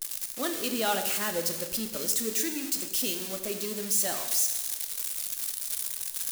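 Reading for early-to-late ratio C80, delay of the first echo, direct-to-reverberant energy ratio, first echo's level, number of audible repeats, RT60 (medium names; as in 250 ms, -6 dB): 9.0 dB, no echo, 5.5 dB, no echo, no echo, 1.2 s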